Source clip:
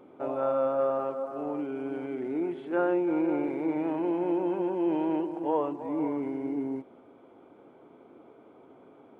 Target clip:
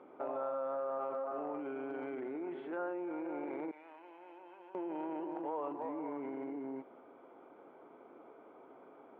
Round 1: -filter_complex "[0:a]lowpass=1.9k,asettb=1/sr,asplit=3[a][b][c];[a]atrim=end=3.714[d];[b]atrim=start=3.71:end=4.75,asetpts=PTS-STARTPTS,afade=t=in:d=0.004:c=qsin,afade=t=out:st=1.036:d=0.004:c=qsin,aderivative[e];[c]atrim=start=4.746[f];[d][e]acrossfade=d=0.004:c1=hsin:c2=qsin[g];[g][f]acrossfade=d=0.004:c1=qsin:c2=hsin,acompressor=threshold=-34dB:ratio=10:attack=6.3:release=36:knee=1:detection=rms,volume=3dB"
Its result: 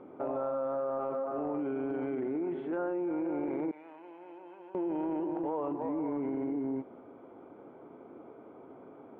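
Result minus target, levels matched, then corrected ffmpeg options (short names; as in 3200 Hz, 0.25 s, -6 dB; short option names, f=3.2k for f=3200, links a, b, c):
1000 Hz band -4.0 dB
-filter_complex "[0:a]lowpass=1.9k,asettb=1/sr,asplit=3[a][b][c];[a]atrim=end=3.714[d];[b]atrim=start=3.71:end=4.75,asetpts=PTS-STARTPTS,afade=t=in:d=0.004:c=qsin,afade=t=out:st=1.036:d=0.004:c=qsin,aderivative[e];[c]atrim=start=4.746[f];[d][e]acrossfade=d=0.004:c1=hsin:c2=qsin[g];[g][f]acrossfade=d=0.004:c1=qsin:c2=hsin,acompressor=threshold=-34dB:ratio=10:attack=6.3:release=36:knee=1:detection=rms,highpass=f=750:p=1,volume=3dB"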